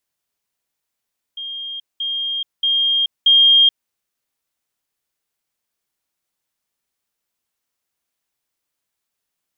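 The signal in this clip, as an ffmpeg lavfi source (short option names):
-f lavfi -i "aevalsrc='pow(10,(-26+6*floor(t/0.63))/20)*sin(2*PI*3220*t)*clip(min(mod(t,0.63),0.43-mod(t,0.63))/0.005,0,1)':d=2.52:s=44100"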